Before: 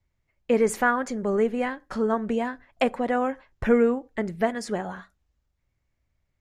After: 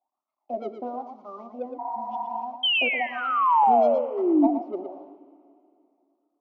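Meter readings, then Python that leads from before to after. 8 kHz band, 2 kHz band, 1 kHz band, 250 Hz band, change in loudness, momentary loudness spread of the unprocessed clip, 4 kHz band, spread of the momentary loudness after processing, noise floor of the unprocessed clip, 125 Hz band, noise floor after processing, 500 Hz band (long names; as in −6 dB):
can't be measured, +0.5 dB, +6.5 dB, −1.0 dB, +2.0 dB, 10 LU, +15.0 dB, 18 LU, −76 dBFS, below −15 dB, −83 dBFS, −3.0 dB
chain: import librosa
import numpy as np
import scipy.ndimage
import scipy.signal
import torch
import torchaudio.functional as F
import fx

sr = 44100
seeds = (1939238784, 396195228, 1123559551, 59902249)

p1 = fx.cvsd(x, sr, bps=32000)
p2 = fx.small_body(p1, sr, hz=(260.0, 370.0, 610.0), ring_ms=25, db=12)
p3 = fx.wah_lfo(p2, sr, hz=1.0, low_hz=420.0, high_hz=1300.0, q=9.5)
p4 = scipy.signal.sosfilt(scipy.signal.butter(2, 200.0, 'highpass', fs=sr, output='sos'), p3)
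p5 = 10.0 ** (-23.0 / 20.0) * np.tanh(p4 / 10.0 ** (-23.0 / 20.0))
p6 = p4 + (p5 * 10.0 ** (-6.5 / 20.0))
p7 = fx.spec_paint(p6, sr, seeds[0], shape='fall', start_s=2.63, length_s=1.84, low_hz=270.0, high_hz=3200.0, level_db=-18.0)
p8 = fx.fixed_phaser(p7, sr, hz=450.0, stages=6)
p9 = p8 + 10.0 ** (-7.5 / 20.0) * np.pad(p8, (int(115 * sr / 1000.0), 0))[:len(p8)]
p10 = fx.spec_repair(p9, sr, seeds[1], start_s=1.82, length_s=0.59, low_hz=270.0, high_hz=2300.0, source='after')
y = fx.rev_plate(p10, sr, seeds[2], rt60_s=2.7, hf_ratio=1.0, predelay_ms=0, drr_db=17.0)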